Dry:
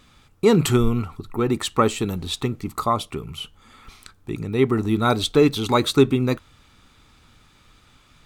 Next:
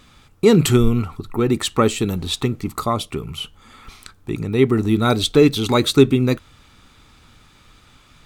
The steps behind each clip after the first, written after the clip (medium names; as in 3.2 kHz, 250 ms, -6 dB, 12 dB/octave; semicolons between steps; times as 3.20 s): dynamic bell 980 Hz, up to -6 dB, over -35 dBFS, Q 1.2; trim +4 dB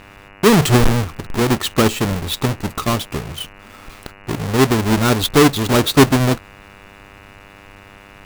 square wave that keeps the level; mains buzz 100 Hz, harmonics 29, -41 dBFS -1 dB/octave; trim -2.5 dB